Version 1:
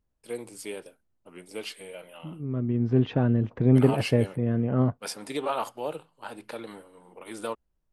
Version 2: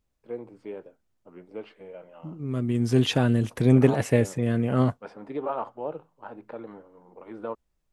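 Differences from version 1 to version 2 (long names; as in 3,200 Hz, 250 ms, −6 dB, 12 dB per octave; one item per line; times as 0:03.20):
first voice: add low-pass filter 1,200 Hz 12 dB per octave
second voice: remove head-to-tape spacing loss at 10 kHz 45 dB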